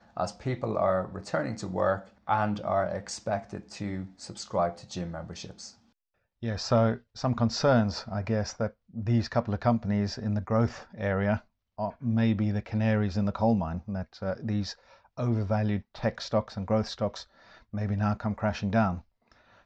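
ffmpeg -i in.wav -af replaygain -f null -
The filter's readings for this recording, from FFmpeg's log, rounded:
track_gain = +9.3 dB
track_peak = 0.184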